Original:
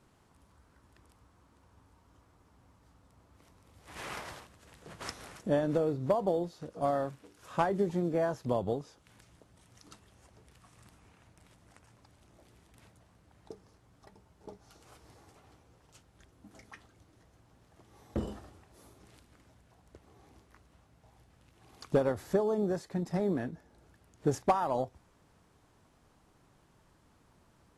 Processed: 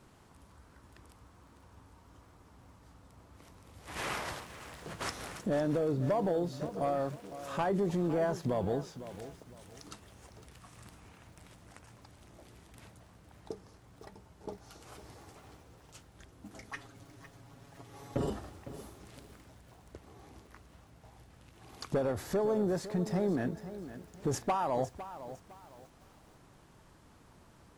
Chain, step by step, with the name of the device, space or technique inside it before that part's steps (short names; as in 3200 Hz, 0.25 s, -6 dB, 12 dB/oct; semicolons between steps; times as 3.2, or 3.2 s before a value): soft clipper into limiter (soft clip -21.5 dBFS, distortion -16 dB; limiter -29.5 dBFS, peak gain reduction 7.5 dB); 16.72–18.3 comb 7.2 ms, depth 96%; lo-fi delay 0.507 s, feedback 35%, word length 10-bit, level -13 dB; gain +5.5 dB